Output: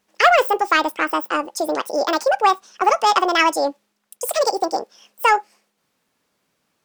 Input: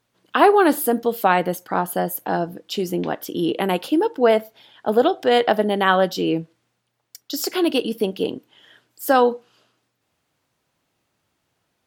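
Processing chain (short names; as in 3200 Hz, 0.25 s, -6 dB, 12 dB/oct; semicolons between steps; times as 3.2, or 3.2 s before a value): in parallel at -12 dB: overloaded stage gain 17.5 dB; on the sum: speed mistake 45 rpm record played at 78 rpm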